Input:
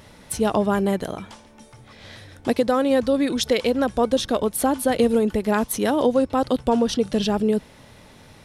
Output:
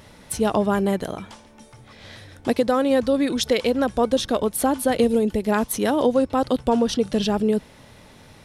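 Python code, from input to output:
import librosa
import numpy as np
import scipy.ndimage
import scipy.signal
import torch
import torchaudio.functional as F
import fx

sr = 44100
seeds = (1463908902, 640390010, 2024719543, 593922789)

y = fx.peak_eq(x, sr, hz=1300.0, db=-7.5, octaves=1.1, at=(5.04, 5.49))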